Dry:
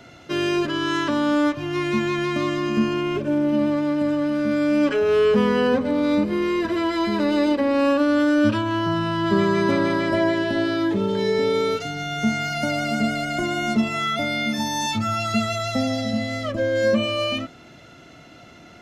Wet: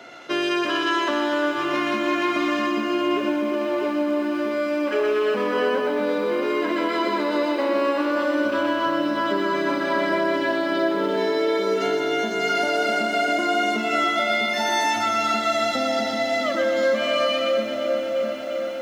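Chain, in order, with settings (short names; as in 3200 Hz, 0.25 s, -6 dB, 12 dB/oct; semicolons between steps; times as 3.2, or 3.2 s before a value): on a send: split-band echo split 660 Hz, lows 0.649 s, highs 0.123 s, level -4 dB; on the sum: compressor, threshold -22 dBFS, peak gain reduction 10 dB; HPF 410 Hz 12 dB/oct; high shelf 4300 Hz -7.5 dB; lo-fi delay 0.35 s, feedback 80%, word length 9-bit, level -12.5 dB; gain +6 dB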